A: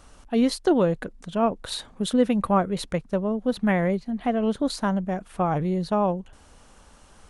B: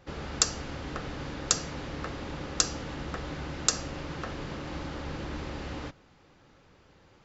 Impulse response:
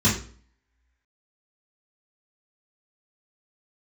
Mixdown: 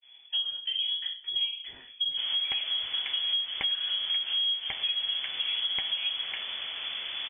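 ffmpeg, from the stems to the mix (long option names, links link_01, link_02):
-filter_complex "[0:a]highpass=67,acompressor=threshold=-24dB:ratio=6,volume=-17dB,asplit=2[link_01][link_02];[link_02]volume=-5.5dB[link_03];[1:a]adelay=2100,volume=1dB[link_04];[2:a]atrim=start_sample=2205[link_05];[link_03][link_05]afir=irnorm=-1:irlink=0[link_06];[link_01][link_04][link_06]amix=inputs=3:normalize=0,agate=range=-33dB:threshold=-51dB:ratio=3:detection=peak,lowpass=frequency=3000:width_type=q:width=0.5098,lowpass=frequency=3000:width_type=q:width=0.6013,lowpass=frequency=3000:width_type=q:width=0.9,lowpass=frequency=3000:width_type=q:width=2.563,afreqshift=-3500,acompressor=threshold=-27dB:ratio=6"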